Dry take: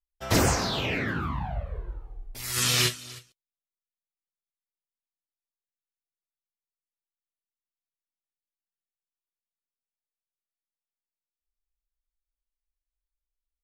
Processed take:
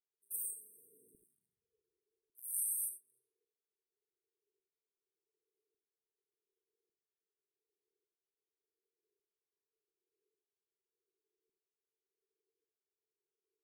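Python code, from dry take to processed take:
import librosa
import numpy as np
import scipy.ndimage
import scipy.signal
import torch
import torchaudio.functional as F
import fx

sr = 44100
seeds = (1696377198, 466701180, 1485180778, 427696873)

y = fx.wiener(x, sr, points=15)
y = scipy.signal.sosfilt(scipy.signal.butter(2, 58.0, 'highpass', fs=sr, output='sos'), y)
y = fx.low_shelf_res(y, sr, hz=500.0, db=-12.0, q=3.0)
y = fx.dmg_noise_band(y, sr, seeds[0], low_hz=350.0, high_hz=740.0, level_db=-69.0)
y = fx.filter_lfo_highpass(y, sr, shape='saw_down', hz=0.87, low_hz=990.0, high_hz=2300.0, q=5.3)
y = fx.brickwall_bandstop(y, sr, low_hz=470.0, high_hz=8200.0)
y = fx.rev_gated(y, sr, seeds[1], gate_ms=100, shape='rising', drr_db=8.5)
y = y * 10.0 ** (-3.0 / 20.0)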